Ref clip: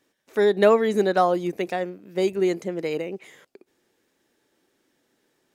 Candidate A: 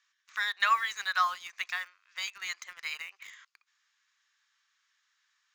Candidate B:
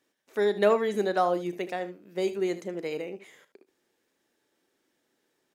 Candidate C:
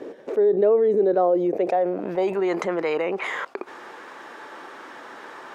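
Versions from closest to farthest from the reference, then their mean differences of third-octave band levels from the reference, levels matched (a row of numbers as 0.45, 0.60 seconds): B, C, A; 1.5, 8.0, 13.0 decibels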